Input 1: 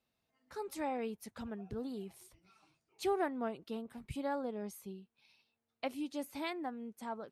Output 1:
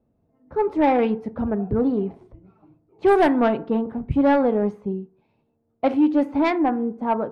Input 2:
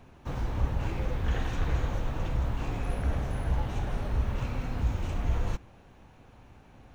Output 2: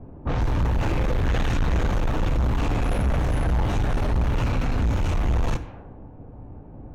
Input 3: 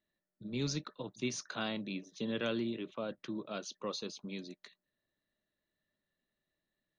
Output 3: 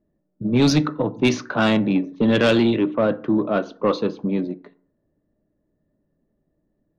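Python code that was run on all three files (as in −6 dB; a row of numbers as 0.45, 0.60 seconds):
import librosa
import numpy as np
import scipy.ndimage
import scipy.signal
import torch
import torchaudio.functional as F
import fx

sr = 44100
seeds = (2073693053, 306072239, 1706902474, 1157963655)

y = fx.env_lowpass(x, sr, base_hz=450.0, full_db=-26.5)
y = fx.rev_fdn(y, sr, rt60_s=0.48, lf_ratio=1.1, hf_ratio=0.5, size_ms=20.0, drr_db=12.5)
y = 10.0 ** (-31.0 / 20.0) * np.tanh(y / 10.0 ** (-31.0 / 20.0))
y = y * 10.0 ** (-22 / 20.0) / np.sqrt(np.mean(np.square(y)))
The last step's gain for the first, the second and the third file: +21.0, +13.0, +21.5 decibels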